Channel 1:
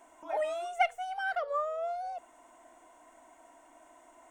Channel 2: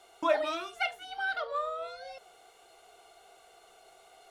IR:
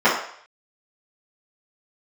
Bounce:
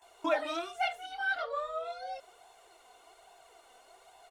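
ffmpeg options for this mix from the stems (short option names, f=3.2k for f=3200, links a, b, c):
-filter_complex "[0:a]highpass=650,volume=-2dB[a];[1:a]adelay=18,volume=2dB[b];[a][b]amix=inputs=2:normalize=0,flanger=delay=1.1:depth=2.9:regen=39:speed=1.2:shape=sinusoidal"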